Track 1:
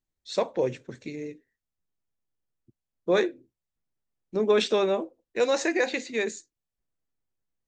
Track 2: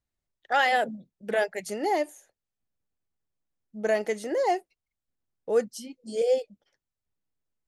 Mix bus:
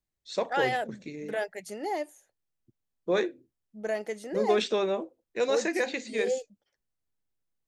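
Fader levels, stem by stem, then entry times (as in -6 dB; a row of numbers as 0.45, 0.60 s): -3.5, -6.0 dB; 0.00, 0.00 s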